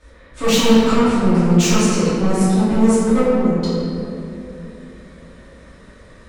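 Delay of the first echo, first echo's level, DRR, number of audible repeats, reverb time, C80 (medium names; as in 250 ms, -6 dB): no echo, no echo, -14.5 dB, no echo, 3.0 s, -1.5 dB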